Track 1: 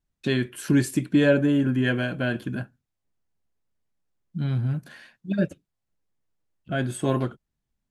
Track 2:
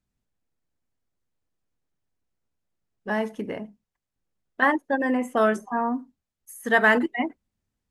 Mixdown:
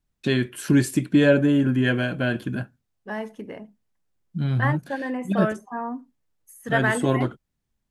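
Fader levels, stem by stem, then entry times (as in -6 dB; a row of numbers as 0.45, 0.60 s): +2.0, -5.0 dB; 0.00, 0.00 s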